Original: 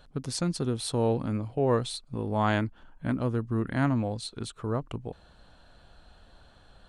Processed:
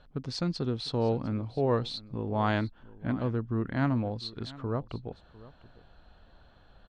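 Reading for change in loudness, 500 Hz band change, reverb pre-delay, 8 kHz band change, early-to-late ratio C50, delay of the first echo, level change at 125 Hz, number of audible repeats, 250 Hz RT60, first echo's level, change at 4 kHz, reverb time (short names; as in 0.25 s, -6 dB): -2.0 dB, -2.0 dB, none, under -10 dB, none, 0.701 s, -1.5 dB, 1, none, -19.5 dB, -0.5 dB, none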